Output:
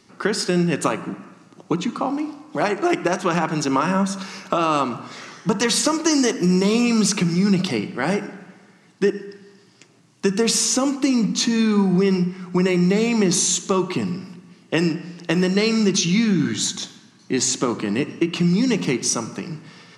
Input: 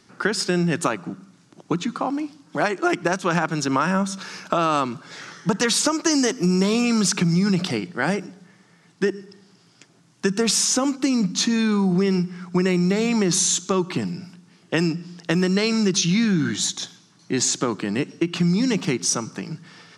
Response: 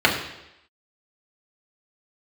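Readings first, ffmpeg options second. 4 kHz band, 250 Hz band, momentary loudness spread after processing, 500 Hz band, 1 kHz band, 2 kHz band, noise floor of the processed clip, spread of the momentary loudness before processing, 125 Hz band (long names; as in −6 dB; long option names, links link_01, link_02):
+0.5 dB, +2.0 dB, 11 LU, +2.5 dB, +1.0 dB, 0.0 dB, −53 dBFS, 10 LU, +1.0 dB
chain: -filter_complex "[0:a]asplit=2[link_01][link_02];[link_02]highshelf=frequency=4500:gain=10.5[link_03];[1:a]atrim=start_sample=2205,asetrate=27783,aresample=44100[link_04];[link_03][link_04]afir=irnorm=-1:irlink=0,volume=-31.5dB[link_05];[link_01][link_05]amix=inputs=2:normalize=0"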